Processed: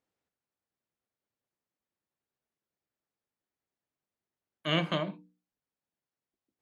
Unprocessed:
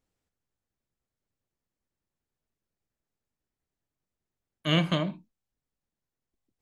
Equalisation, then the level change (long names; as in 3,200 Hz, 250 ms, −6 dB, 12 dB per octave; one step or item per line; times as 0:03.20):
high-pass filter 290 Hz 6 dB per octave
low-pass filter 3,000 Hz 6 dB per octave
mains-hum notches 60/120/180/240/300/360/420/480 Hz
0.0 dB